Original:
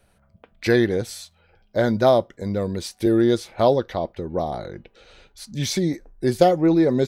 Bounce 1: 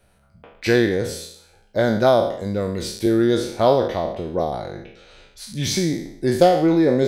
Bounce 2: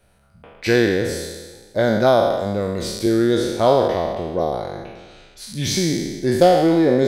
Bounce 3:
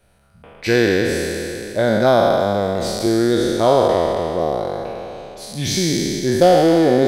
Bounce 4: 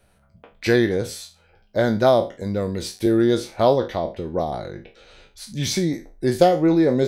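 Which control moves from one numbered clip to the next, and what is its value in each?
spectral sustain, RT60: 0.67 s, 1.39 s, 3.14 s, 0.3 s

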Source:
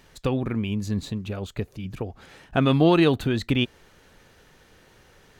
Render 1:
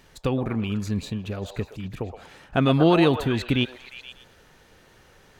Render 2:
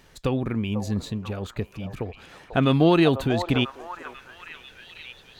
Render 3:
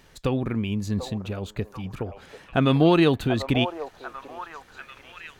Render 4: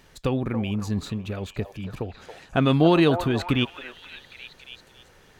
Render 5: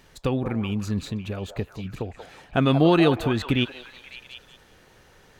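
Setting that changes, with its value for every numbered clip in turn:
repeats whose band climbs or falls, time: 119 ms, 494 ms, 741 ms, 277 ms, 184 ms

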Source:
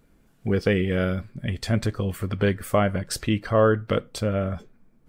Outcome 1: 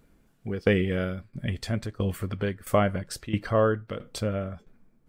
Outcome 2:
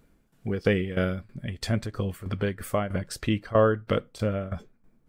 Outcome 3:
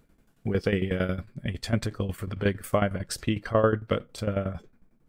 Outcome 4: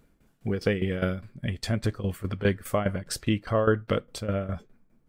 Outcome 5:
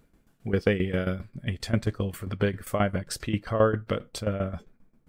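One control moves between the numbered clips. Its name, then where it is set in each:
tremolo, rate: 1.5 Hz, 3.1 Hz, 11 Hz, 4.9 Hz, 7.5 Hz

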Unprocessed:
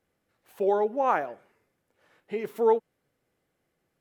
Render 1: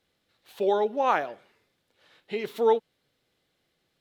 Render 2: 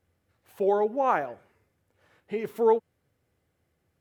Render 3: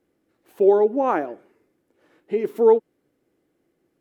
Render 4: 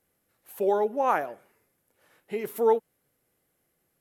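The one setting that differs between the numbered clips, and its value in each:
peaking EQ, frequency: 3.8 kHz, 84 Hz, 320 Hz, 12 kHz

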